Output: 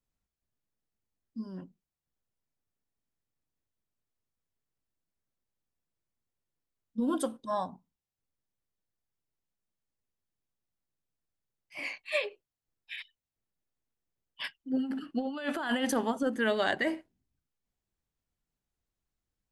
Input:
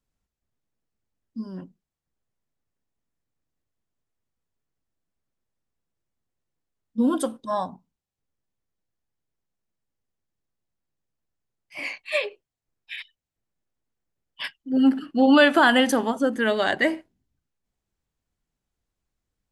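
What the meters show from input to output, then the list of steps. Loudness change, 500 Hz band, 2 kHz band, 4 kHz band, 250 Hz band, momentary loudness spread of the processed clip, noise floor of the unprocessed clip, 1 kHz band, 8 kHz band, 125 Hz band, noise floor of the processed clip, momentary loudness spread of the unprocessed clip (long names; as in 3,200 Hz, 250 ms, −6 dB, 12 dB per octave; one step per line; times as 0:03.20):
−11.5 dB, −9.5 dB, −10.5 dB, −10.5 dB, −11.0 dB, 14 LU, below −85 dBFS, −10.5 dB, −6.0 dB, can't be measured, below −85 dBFS, 22 LU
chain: compressor whose output falls as the input rises −20 dBFS, ratio −0.5
level −8 dB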